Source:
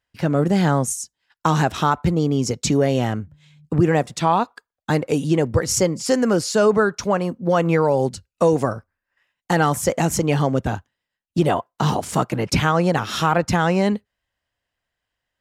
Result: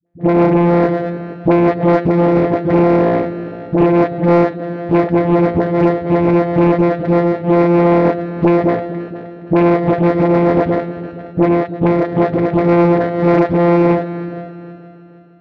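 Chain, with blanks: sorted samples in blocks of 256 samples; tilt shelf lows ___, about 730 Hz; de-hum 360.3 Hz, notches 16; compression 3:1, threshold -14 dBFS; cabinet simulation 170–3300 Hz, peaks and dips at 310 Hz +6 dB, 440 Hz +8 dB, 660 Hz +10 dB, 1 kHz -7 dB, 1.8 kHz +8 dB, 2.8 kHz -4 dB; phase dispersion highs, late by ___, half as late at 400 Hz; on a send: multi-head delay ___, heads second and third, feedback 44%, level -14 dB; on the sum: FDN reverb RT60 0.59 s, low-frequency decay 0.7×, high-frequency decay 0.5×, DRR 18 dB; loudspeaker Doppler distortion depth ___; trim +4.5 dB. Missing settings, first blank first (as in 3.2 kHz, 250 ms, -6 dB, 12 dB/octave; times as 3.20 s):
+8.5 dB, 64 ms, 156 ms, 0.62 ms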